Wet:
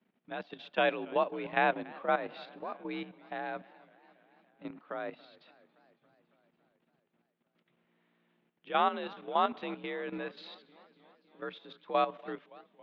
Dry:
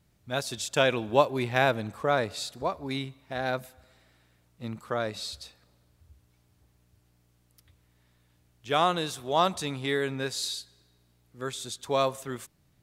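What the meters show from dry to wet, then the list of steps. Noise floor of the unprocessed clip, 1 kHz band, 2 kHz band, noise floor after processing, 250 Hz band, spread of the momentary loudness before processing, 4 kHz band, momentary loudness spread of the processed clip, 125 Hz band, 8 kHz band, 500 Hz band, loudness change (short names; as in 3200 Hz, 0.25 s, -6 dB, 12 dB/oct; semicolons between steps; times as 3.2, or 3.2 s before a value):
-67 dBFS, -3.0 dB, -4.5 dB, -79 dBFS, -6.0 dB, 13 LU, -11.5 dB, 15 LU, -16.5 dB, under -40 dB, -6.5 dB, -5.0 dB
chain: mistuned SSB +51 Hz 150–3200 Hz; level quantiser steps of 12 dB; warbling echo 0.281 s, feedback 69%, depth 133 cents, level -22.5 dB; gain -1.5 dB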